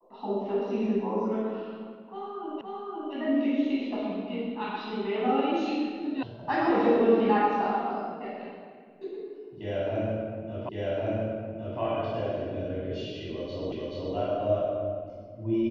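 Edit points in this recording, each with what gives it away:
2.61 s: repeat of the last 0.52 s
6.23 s: sound stops dead
10.69 s: repeat of the last 1.11 s
13.72 s: repeat of the last 0.43 s

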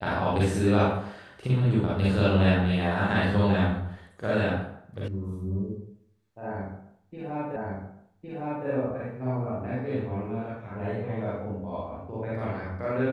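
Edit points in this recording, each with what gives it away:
5.08 s: sound stops dead
7.56 s: repeat of the last 1.11 s

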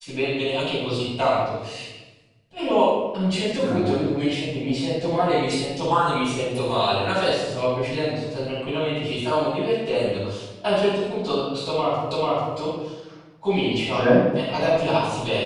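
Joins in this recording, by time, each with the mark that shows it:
12.11 s: repeat of the last 0.44 s

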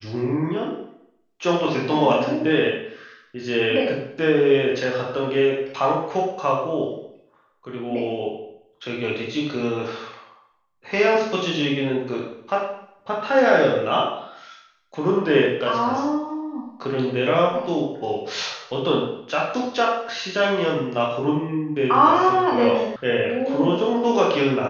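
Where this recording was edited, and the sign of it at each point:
22.96 s: sound stops dead

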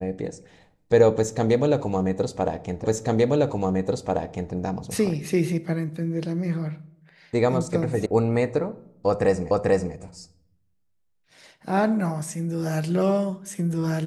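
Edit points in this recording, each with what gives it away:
2.84 s: repeat of the last 1.69 s
8.06 s: sound stops dead
9.51 s: repeat of the last 0.44 s

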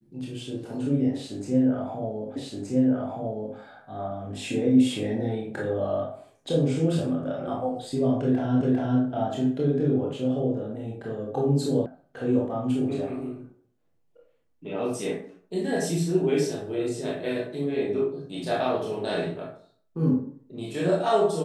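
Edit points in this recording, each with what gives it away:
2.36 s: repeat of the last 1.22 s
8.61 s: repeat of the last 0.4 s
11.86 s: sound stops dead

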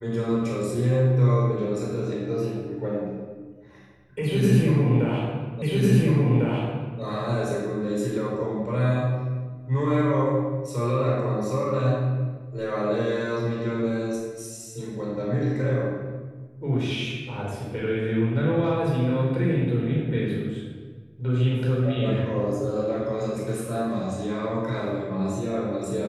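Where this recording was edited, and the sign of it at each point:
5.62 s: repeat of the last 1.4 s

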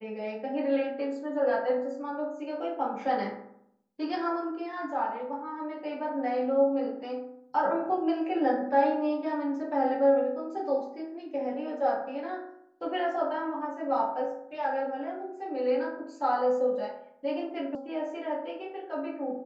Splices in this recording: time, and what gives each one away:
17.75 s: sound stops dead

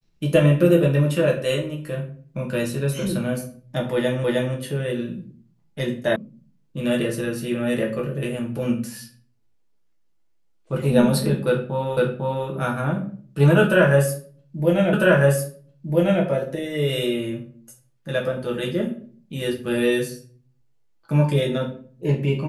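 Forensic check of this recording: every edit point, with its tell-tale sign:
4.24 s: repeat of the last 0.31 s
6.16 s: sound stops dead
11.97 s: repeat of the last 0.5 s
14.93 s: repeat of the last 1.3 s

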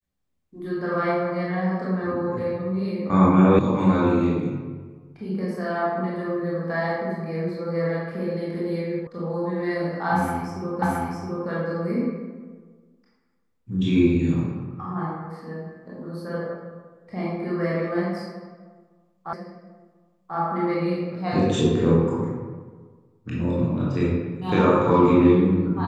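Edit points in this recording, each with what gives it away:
3.59 s: sound stops dead
9.07 s: sound stops dead
10.82 s: repeat of the last 0.67 s
19.33 s: repeat of the last 1.04 s

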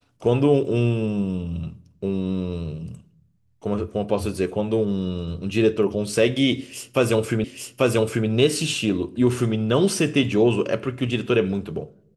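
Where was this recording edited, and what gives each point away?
7.44 s: repeat of the last 0.84 s

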